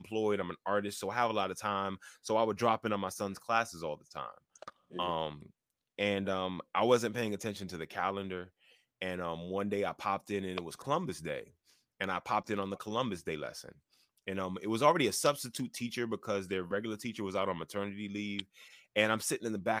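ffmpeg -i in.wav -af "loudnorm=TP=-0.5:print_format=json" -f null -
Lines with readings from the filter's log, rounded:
"input_i" : "-34.7",
"input_tp" : "-11.3",
"input_lra" : "4.0",
"input_thresh" : "-45.2",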